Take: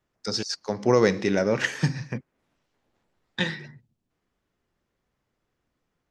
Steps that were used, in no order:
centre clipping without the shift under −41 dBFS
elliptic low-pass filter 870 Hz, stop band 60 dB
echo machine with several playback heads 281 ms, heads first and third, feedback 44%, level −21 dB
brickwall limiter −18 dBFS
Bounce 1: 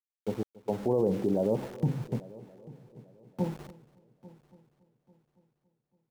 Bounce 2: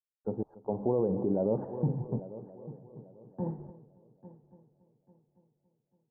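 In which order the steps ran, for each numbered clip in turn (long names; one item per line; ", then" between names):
elliptic low-pass filter, then centre clipping without the shift, then brickwall limiter, then echo machine with several playback heads
centre clipping without the shift, then echo machine with several playback heads, then brickwall limiter, then elliptic low-pass filter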